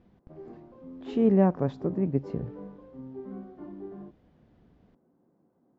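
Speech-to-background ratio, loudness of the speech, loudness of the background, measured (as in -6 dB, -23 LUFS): 17.5 dB, -26.5 LUFS, -44.0 LUFS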